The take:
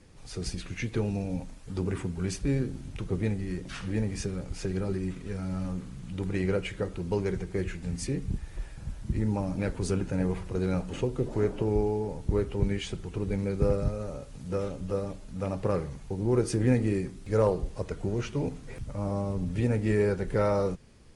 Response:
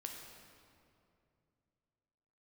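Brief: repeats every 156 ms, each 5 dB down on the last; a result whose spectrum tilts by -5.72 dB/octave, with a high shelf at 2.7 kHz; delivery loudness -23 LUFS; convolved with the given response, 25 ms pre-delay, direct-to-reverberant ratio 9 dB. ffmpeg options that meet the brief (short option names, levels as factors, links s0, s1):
-filter_complex "[0:a]highshelf=f=2700:g=8.5,aecho=1:1:156|312|468|624|780|936|1092:0.562|0.315|0.176|0.0988|0.0553|0.031|0.0173,asplit=2[s0][s1];[1:a]atrim=start_sample=2205,adelay=25[s2];[s1][s2]afir=irnorm=-1:irlink=0,volume=0.473[s3];[s0][s3]amix=inputs=2:normalize=0,volume=1.88"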